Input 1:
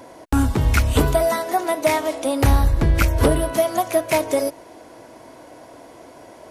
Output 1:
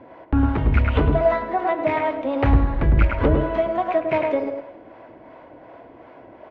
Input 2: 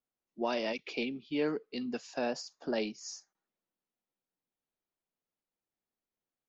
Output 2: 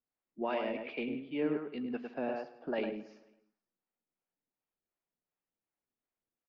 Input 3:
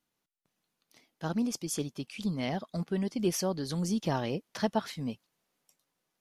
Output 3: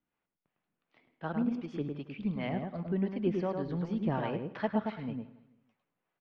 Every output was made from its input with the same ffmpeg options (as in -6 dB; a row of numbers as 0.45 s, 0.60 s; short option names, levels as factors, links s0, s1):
-filter_complex "[0:a]lowpass=f=2700:w=0.5412,lowpass=f=2700:w=1.3066,asplit=2[s0][s1];[s1]adelay=105,lowpass=f=2100:p=1,volume=0.631,asplit=2[s2][s3];[s3]adelay=105,lowpass=f=2100:p=1,volume=0.16,asplit=2[s4][s5];[s5]adelay=105,lowpass=f=2100:p=1,volume=0.16[s6];[s2][s4][s6]amix=inputs=3:normalize=0[s7];[s0][s7]amix=inputs=2:normalize=0,acrossover=split=470[s8][s9];[s8]aeval=exprs='val(0)*(1-0.5/2+0.5/2*cos(2*PI*2.7*n/s))':c=same[s10];[s9]aeval=exprs='val(0)*(1-0.5/2-0.5/2*cos(2*PI*2.7*n/s))':c=same[s11];[s10][s11]amix=inputs=2:normalize=0,asplit=2[s12][s13];[s13]aecho=0:1:166|332|498:0.106|0.0424|0.0169[s14];[s12][s14]amix=inputs=2:normalize=0"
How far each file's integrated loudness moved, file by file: -1.0 LU, -1.0 LU, -1.5 LU